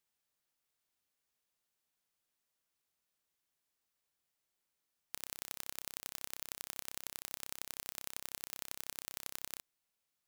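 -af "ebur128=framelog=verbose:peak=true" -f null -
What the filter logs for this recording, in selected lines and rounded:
Integrated loudness:
  I:         -43.6 LUFS
  Threshold: -53.6 LUFS
Loudness range:
  LRA:         8.2 LU
  Threshold: -64.8 LUFS
  LRA low:   -51.4 LUFS
  LRA high:  -43.2 LUFS
True peak:
  Peak:      -12.1 dBFS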